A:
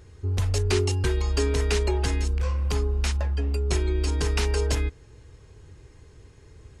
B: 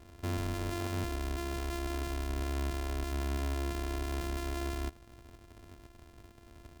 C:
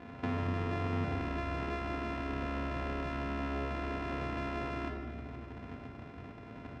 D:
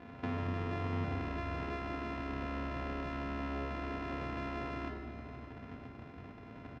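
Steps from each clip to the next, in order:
samples sorted by size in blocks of 128 samples; brickwall limiter −23.5 dBFS, peak gain reduction 10.5 dB; level −5.5 dB
Chebyshev band-pass filter 140–2,200 Hz, order 2; downward compressor 3 to 1, threshold −43 dBFS, peak gain reduction 8 dB; rectangular room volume 1,300 cubic metres, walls mixed, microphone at 1.9 metres; level +8.5 dB
low-pass filter 7,000 Hz 12 dB per octave; single-tap delay 596 ms −15.5 dB; level −2.5 dB

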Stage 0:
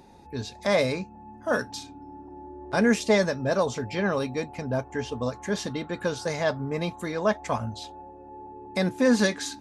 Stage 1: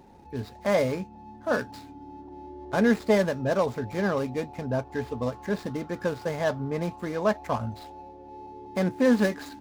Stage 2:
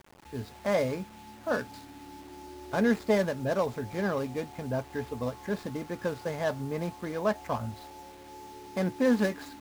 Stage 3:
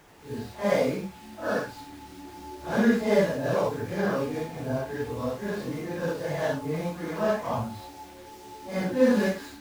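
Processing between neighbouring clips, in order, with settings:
running median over 15 samples
bit-depth reduction 8 bits, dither none; level −3.5 dB
random phases in long frames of 200 ms; level +3 dB

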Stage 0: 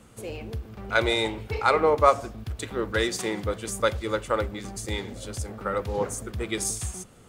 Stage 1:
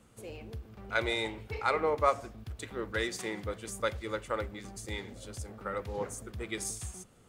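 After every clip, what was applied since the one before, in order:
dynamic equaliser 2,000 Hz, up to +4 dB, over −44 dBFS, Q 2.5
level −8.5 dB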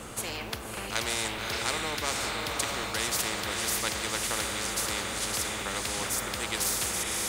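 feedback delay with all-pass diffusion 580 ms, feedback 46%, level −8 dB
every bin compressed towards the loudest bin 4 to 1
level +2.5 dB

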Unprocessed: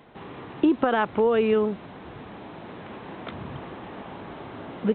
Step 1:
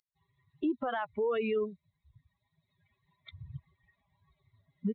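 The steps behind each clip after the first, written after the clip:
spectral dynamics exaggerated over time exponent 3
brickwall limiter −24 dBFS, peak gain reduction 11.5 dB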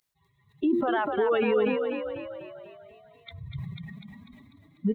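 hum removal 115 Hz, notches 5
echo with shifted repeats 247 ms, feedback 54%, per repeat +36 Hz, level −5.5 dB
level that may fall only so fast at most 31 dB per second
level +5.5 dB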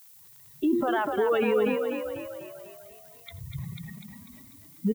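background noise violet −53 dBFS
single-tap delay 84 ms −22 dB
surface crackle 73 per second −45 dBFS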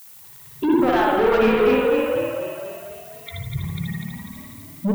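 soft clipping −26 dBFS, distortion −10 dB
convolution reverb, pre-delay 54 ms, DRR −2 dB
level +8.5 dB

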